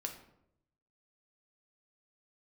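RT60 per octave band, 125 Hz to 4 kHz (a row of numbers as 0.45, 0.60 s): 1.1, 0.90, 0.85, 0.70, 0.55, 0.45 s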